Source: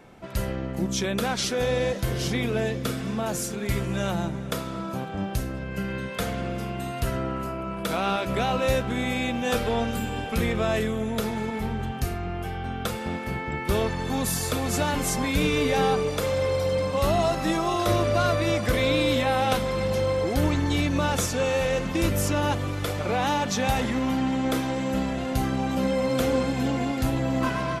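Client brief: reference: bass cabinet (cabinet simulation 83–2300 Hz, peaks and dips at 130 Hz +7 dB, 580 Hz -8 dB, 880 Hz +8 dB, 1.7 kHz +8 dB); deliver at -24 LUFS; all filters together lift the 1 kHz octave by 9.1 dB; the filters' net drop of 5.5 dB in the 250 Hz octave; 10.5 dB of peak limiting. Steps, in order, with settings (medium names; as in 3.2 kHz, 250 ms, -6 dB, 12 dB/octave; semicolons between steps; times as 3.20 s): peaking EQ 250 Hz -8.5 dB; peaking EQ 1 kHz +7 dB; peak limiter -19 dBFS; cabinet simulation 83–2300 Hz, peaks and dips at 130 Hz +7 dB, 580 Hz -8 dB, 880 Hz +8 dB, 1.7 kHz +8 dB; trim +3 dB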